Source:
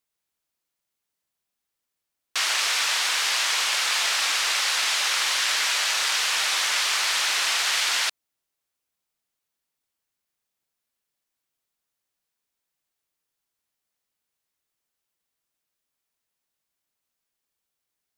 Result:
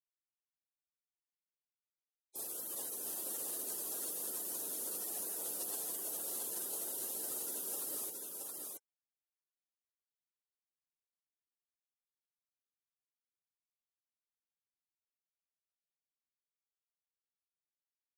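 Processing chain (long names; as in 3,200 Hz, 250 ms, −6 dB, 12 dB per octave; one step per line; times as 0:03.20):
gate on every frequency bin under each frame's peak −20 dB weak
parametric band 2,200 Hz −11.5 dB 0.34 octaves
single-tap delay 674 ms −3 dB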